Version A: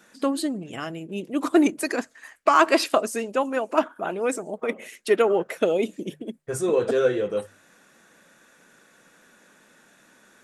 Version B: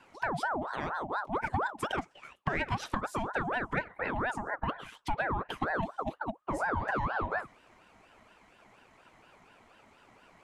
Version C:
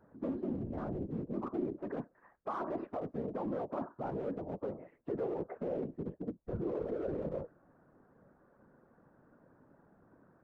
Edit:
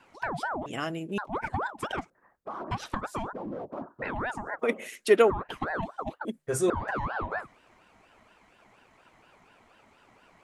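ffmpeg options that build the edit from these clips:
-filter_complex "[0:a]asplit=3[s0][s1][s2];[2:a]asplit=2[s3][s4];[1:a]asplit=6[s5][s6][s7][s8][s9][s10];[s5]atrim=end=0.662[s11];[s0]atrim=start=0.658:end=1.182[s12];[s6]atrim=start=1.178:end=2.102[s13];[s3]atrim=start=2.098:end=2.712[s14];[s7]atrim=start=2.708:end=3.332[s15];[s4]atrim=start=3.328:end=4.022[s16];[s8]atrim=start=4.018:end=4.592[s17];[s1]atrim=start=4.588:end=5.302[s18];[s9]atrim=start=5.298:end=6.252[s19];[s2]atrim=start=6.248:end=6.702[s20];[s10]atrim=start=6.698[s21];[s11][s12]acrossfade=d=0.004:c1=hsin:c2=hsin[s22];[s22][s13]acrossfade=d=0.004:c1=hsin:c2=hsin[s23];[s23][s14]acrossfade=d=0.004:c1=hsin:c2=hsin[s24];[s24][s15]acrossfade=d=0.004:c1=hsin:c2=hsin[s25];[s25][s16]acrossfade=d=0.004:c1=hsin:c2=hsin[s26];[s26][s17]acrossfade=d=0.004:c1=hsin:c2=hsin[s27];[s27][s18]acrossfade=d=0.004:c1=hsin:c2=hsin[s28];[s28][s19]acrossfade=d=0.004:c1=hsin:c2=hsin[s29];[s29][s20]acrossfade=d=0.004:c1=hsin:c2=hsin[s30];[s30][s21]acrossfade=d=0.004:c1=hsin:c2=hsin"

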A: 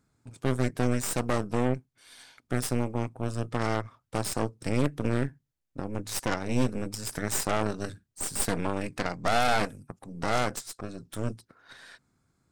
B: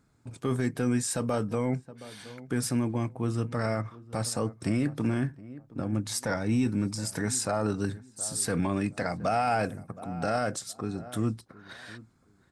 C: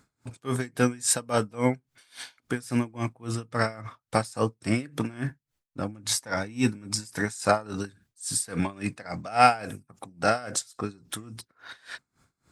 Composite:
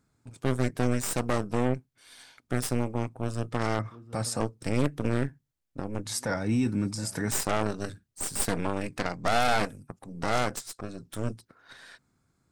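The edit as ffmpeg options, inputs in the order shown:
-filter_complex "[1:a]asplit=2[s0][s1];[0:a]asplit=3[s2][s3][s4];[s2]atrim=end=3.792[s5];[s0]atrim=start=3.788:end=4.402[s6];[s3]atrim=start=4.398:end=6.062[s7];[s1]atrim=start=6.058:end=7.312[s8];[s4]atrim=start=7.308[s9];[s5][s6]acrossfade=d=0.004:c1=hsin:c2=hsin[s10];[s10][s7]acrossfade=d=0.004:c1=hsin:c2=hsin[s11];[s11][s8]acrossfade=d=0.004:c1=hsin:c2=hsin[s12];[s12][s9]acrossfade=d=0.004:c1=hsin:c2=hsin"

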